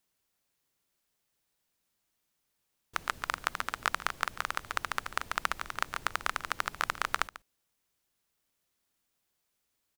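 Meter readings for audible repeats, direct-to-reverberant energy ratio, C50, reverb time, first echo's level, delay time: 1, none, none, none, -16.5 dB, 0.143 s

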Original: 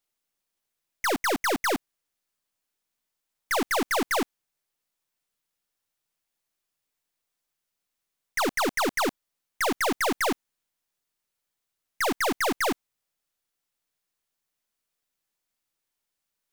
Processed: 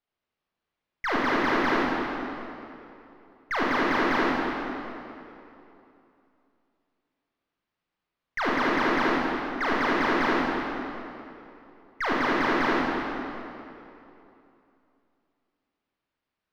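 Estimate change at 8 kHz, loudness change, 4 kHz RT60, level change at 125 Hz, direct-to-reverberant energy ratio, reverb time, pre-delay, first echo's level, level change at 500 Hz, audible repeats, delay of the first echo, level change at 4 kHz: -16.0 dB, +1.0 dB, 2.2 s, +6.5 dB, -5.5 dB, 2.9 s, 26 ms, none, +1.5 dB, none, none, -2.5 dB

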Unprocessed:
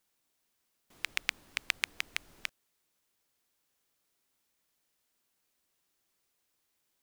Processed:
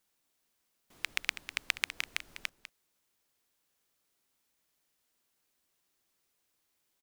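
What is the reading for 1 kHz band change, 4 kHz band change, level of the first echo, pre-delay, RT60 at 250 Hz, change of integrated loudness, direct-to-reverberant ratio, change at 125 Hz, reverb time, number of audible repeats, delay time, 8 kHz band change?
0.0 dB, 0.0 dB, -12.5 dB, none, none, 0.0 dB, none, n/a, none, 1, 0.199 s, 0.0 dB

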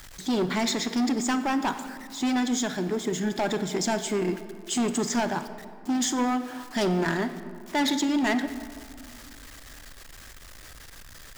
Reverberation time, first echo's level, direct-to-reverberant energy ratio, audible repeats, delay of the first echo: 2.2 s, none, 10.5 dB, none, none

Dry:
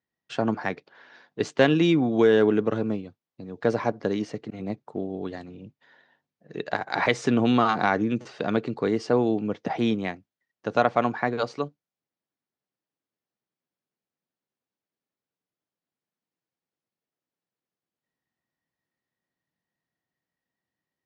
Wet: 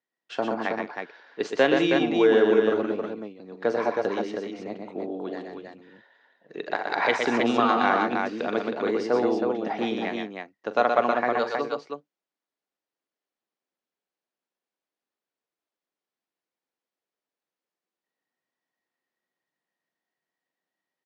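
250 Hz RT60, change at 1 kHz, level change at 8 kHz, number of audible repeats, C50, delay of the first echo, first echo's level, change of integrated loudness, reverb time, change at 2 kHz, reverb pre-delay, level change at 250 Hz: none, +2.0 dB, n/a, 4, none, 42 ms, -14.0 dB, 0.0 dB, none, +2.0 dB, none, -2.5 dB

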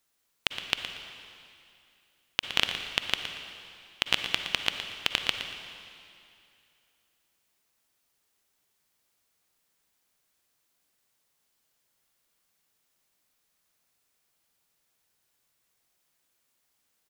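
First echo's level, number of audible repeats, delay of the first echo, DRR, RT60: -10.5 dB, 1, 0.117 s, 5.0 dB, 2.5 s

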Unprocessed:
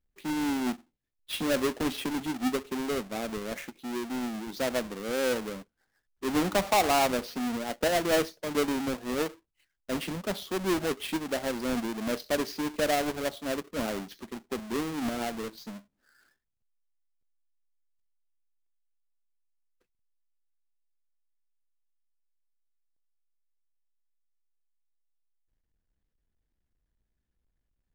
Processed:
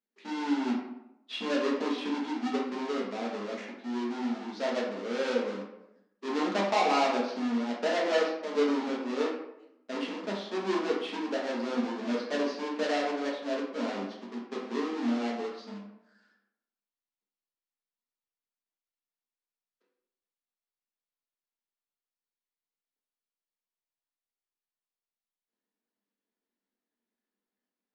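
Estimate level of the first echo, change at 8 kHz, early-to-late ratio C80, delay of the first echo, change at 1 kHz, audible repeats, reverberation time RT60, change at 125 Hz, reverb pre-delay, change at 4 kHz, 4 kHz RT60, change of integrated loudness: none, -11.0 dB, 7.0 dB, none, -0.5 dB, none, 0.85 s, n/a, 4 ms, -2.5 dB, 0.50 s, -1.0 dB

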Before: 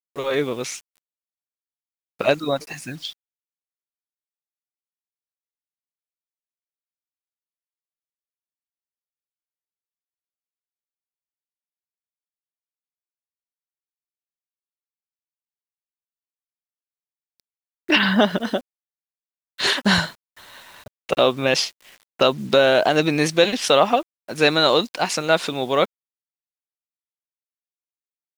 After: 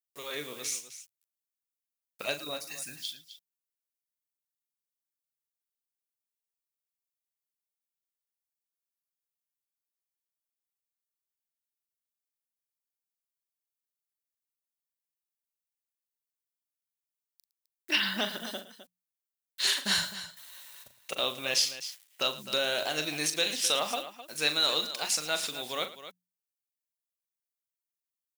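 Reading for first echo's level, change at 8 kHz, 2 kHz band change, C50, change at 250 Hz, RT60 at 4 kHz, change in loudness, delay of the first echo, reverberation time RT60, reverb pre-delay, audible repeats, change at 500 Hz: -10.0 dB, -0.5 dB, -10.5 dB, none, -18.5 dB, none, -10.0 dB, 40 ms, none, none, 3, -17.5 dB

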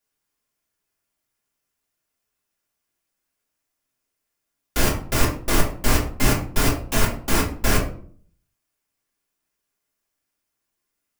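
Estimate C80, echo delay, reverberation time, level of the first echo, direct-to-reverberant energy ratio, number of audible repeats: 12.0 dB, none, 0.55 s, none, -5.0 dB, none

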